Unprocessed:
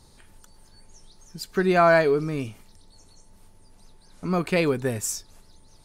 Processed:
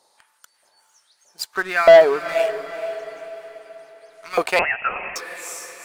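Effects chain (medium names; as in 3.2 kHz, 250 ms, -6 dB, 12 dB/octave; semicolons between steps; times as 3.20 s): 1.54–2.29 s: tilt shelf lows +9 dB, about 760 Hz; LFO high-pass saw up 1.6 Hz 550–2200 Hz; waveshaping leveller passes 2; on a send: echo that smears into a reverb 452 ms, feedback 46%, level -11.5 dB; 4.59–5.16 s: on the sum: frequency inversion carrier 3.1 kHz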